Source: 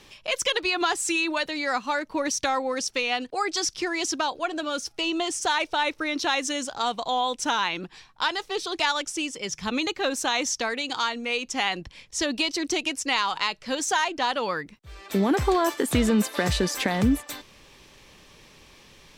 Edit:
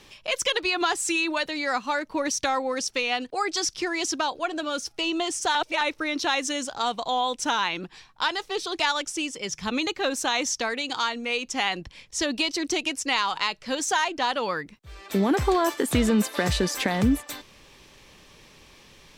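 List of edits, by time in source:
0:05.55–0:05.81: reverse

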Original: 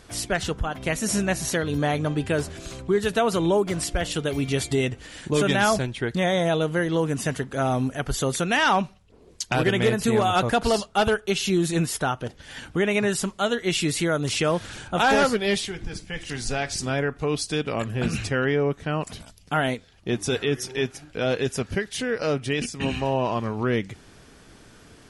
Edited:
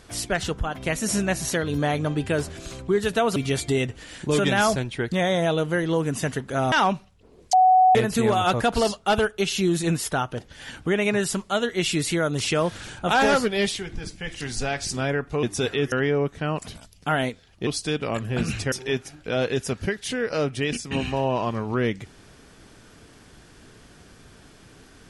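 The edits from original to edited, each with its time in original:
0:03.36–0:04.39: remove
0:07.75–0:08.61: remove
0:09.42–0:09.84: beep over 745 Hz −12 dBFS
0:17.32–0:18.37: swap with 0:20.12–0:20.61

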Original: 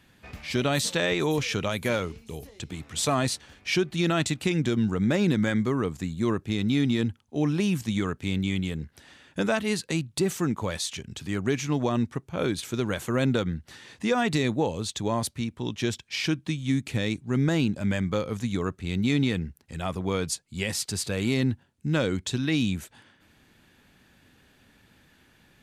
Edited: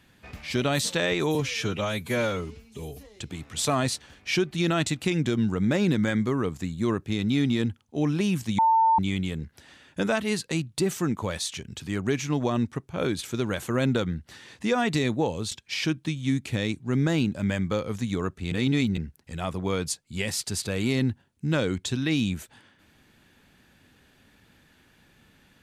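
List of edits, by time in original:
0:01.35–0:02.56: time-stretch 1.5×
0:07.98–0:08.38: beep over 898 Hz −16.5 dBFS
0:14.91–0:15.93: remove
0:18.93–0:19.39: reverse

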